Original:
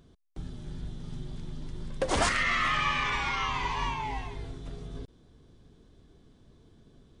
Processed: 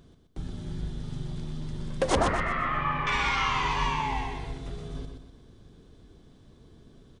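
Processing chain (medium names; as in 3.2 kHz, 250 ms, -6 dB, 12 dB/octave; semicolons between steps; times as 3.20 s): 2.15–3.07 s: low-pass 1.2 kHz 12 dB/octave; on a send: feedback delay 124 ms, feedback 39%, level -6 dB; on the sum: trim +3 dB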